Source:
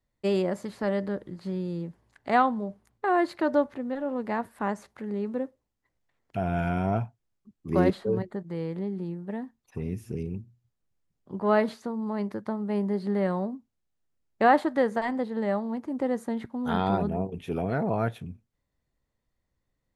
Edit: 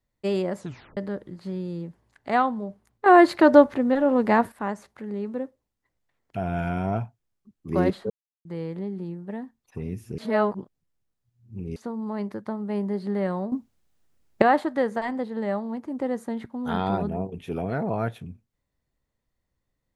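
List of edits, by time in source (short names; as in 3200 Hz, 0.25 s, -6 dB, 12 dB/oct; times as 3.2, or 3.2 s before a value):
0.59 tape stop 0.38 s
3.06–4.52 gain +10 dB
8.1–8.45 mute
10.18–11.76 reverse
13.52–14.42 gain +11.5 dB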